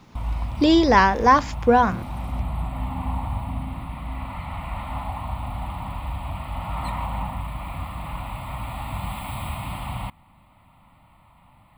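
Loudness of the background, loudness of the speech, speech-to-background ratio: −31.5 LKFS, −18.0 LKFS, 13.5 dB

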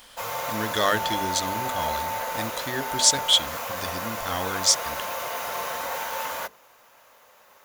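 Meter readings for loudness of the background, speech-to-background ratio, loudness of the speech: −30.0 LKFS, 6.0 dB, −24.0 LKFS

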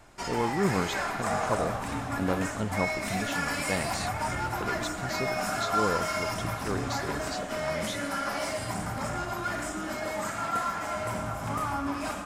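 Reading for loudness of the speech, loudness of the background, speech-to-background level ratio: −34.5 LKFS, −31.5 LKFS, −3.0 dB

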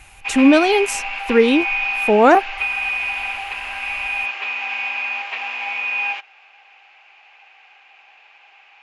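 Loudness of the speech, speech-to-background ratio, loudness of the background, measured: −15.5 LKFS, 7.0 dB, −22.5 LKFS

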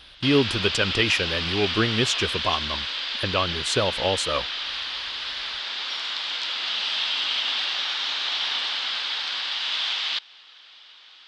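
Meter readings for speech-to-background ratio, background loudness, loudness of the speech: 1.0 dB, −25.5 LKFS, −24.5 LKFS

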